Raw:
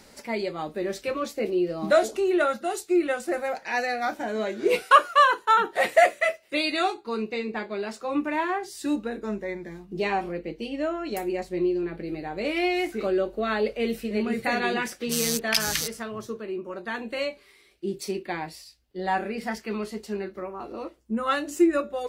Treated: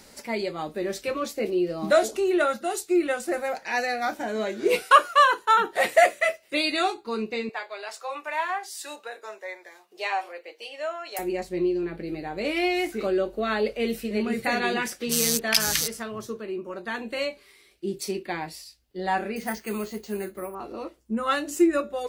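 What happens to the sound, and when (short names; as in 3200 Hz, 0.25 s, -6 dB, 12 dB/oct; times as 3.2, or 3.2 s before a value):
7.49–11.19 HPF 580 Hz 24 dB/oct
19.36–20.55 careless resampling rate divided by 4×, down filtered, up hold
whole clip: high shelf 5000 Hz +5 dB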